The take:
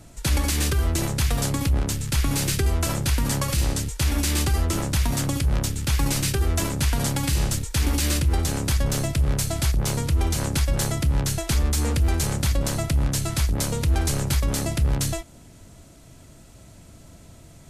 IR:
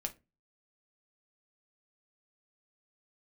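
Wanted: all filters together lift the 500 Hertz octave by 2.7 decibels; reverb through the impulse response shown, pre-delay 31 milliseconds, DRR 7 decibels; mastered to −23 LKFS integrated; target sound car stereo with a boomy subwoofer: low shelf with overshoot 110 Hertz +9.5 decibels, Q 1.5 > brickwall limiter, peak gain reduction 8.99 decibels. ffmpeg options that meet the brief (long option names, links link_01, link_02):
-filter_complex "[0:a]equalizer=frequency=500:width_type=o:gain=4,asplit=2[link_01][link_02];[1:a]atrim=start_sample=2205,adelay=31[link_03];[link_02][link_03]afir=irnorm=-1:irlink=0,volume=-6.5dB[link_04];[link_01][link_04]amix=inputs=2:normalize=0,lowshelf=frequency=110:width_type=q:width=1.5:gain=9.5,volume=-5dB,alimiter=limit=-13dB:level=0:latency=1"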